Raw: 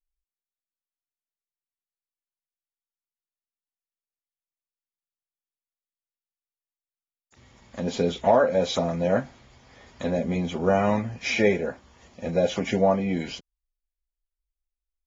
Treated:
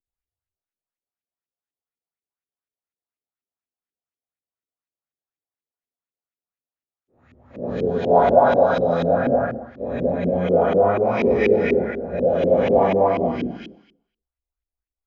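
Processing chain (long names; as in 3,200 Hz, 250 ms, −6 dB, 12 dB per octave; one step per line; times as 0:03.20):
every bin's largest magnitude spread in time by 480 ms
convolution reverb RT60 0.70 s, pre-delay 73 ms, DRR −3 dB
in parallel at −10 dB: hard clipping −5 dBFS, distortion −10 dB
on the sum: auto-filter low-pass saw up 4.1 Hz 310–2,600 Hz
level −16 dB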